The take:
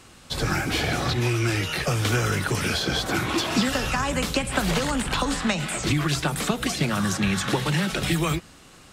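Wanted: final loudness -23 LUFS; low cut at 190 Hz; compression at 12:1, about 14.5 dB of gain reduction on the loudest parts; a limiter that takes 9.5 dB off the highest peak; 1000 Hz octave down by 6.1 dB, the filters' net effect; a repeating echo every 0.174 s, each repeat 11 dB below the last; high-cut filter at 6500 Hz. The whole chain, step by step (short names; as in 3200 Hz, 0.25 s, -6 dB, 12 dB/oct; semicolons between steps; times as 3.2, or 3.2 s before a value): HPF 190 Hz; LPF 6500 Hz; bell 1000 Hz -8.5 dB; compressor 12:1, threshold -36 dBFS; limiter -31.5 dBFS; feedback echo 0.174 s, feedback 28%, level -11 dB; gain +17.5 dB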